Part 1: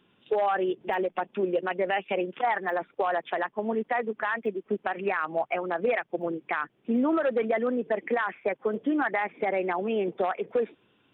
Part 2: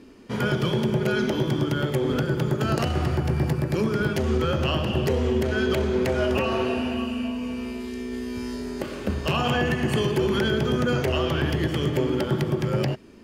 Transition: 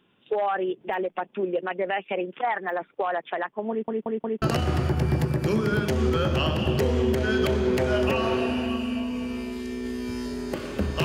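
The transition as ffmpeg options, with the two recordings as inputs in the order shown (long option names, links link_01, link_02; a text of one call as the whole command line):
ffmpeg -i cue0.wav -i cue1.wav -filter_complex "[0:a]apad=whole_dur=11.04,atrim=end=11.04,asplit=4[link_01][link_02][link_03][link_04];[link_01]atrim=end=3.882[link_05];[link_02]atrim=start=3.698:end=3.882[link_06];[link_03]atrim=start=3.698:end=3.882[link_07];[link_04]atrim=start=3.698:end=3.882[link_08];[1:a]atrim=start=2.698:end=9.32[link_09];[link_05][link_06]acrossfade=duration=0.004:curve1=hsin:curve2=hsin[link_10];[link_10][link_07]acrossfade=duration=0.004:curve1=hsin:curve2=hsin[link_11];[link_11][link_08]acrossfade=duration=0.004:curve1=hsin:curve2=hsin[link_12];[link_12][link_09]acrossfade=duration=0.004:curve1=hsin:curve2=hsin" out.wav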